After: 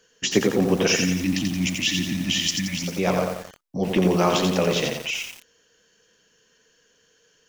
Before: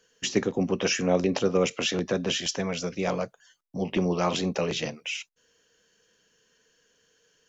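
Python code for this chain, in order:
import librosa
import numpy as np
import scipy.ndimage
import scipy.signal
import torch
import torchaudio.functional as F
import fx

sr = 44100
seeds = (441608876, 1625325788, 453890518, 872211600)

y = fx.brickwall_bandstop(x, sr, low_hz=340.0, high_hz=1700.0, at=(0.92, 2.88))
y = fx.echo_crushed(y, sr, ms=87, feedback_pct=55, bits=7, wet_db=-3.5)
y = y * librosa.db_to_amplitude(4.5)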